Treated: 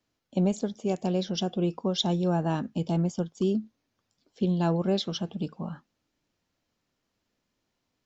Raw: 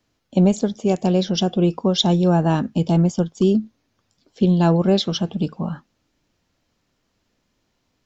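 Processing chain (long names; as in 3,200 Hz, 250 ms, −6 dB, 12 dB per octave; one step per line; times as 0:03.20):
low-shelf EQ 93 Hz −5.5 dB
level −8.5 dB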